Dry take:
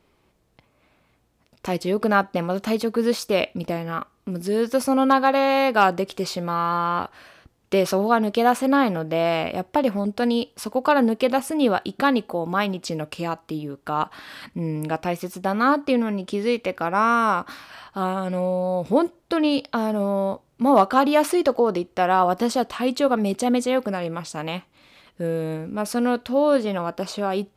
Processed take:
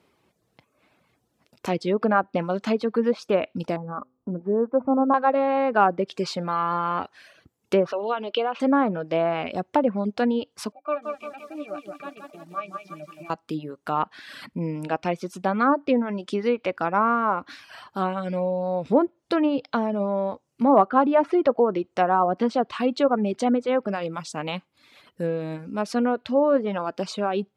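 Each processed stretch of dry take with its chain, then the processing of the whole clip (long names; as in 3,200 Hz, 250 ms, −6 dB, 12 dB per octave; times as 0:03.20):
0:03.76–0:05.14: low-pass filter 1,100 Hz 24 dB per octave + hum removal 127.7 Hz, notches 4
0:07.92–0:08.60: downward compressor 3 to 1, threshold −19 dBFS + loudspeaker in its box 420–4,100 Hz, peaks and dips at 500 Hz +5 dB, 750 Hz −3 dB, 1,800 Hz −8 dB, 2,900 Hz +9 dB
0:10.72–0:13.30: loudspeaker in its box 270–8,000 Hz, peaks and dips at 280 Hz −10 dB, 500 Hz −5 dB, 1,800 Hz +3 dB, 2,500 Hz +6 dB, 3,600 Hz +4 dB, 5,500 Hz +6 dB + resonances in every octave D, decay 0.11 s + feedback echo at a low word length 172 ms, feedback 55%, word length 9 bits, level −4 dB
whole clip: treble cut that deepens with the level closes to 1,400 Hz, closed at −15.5 dBFS; high-pass filter 110 Hz; reverb reduction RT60 0.65 s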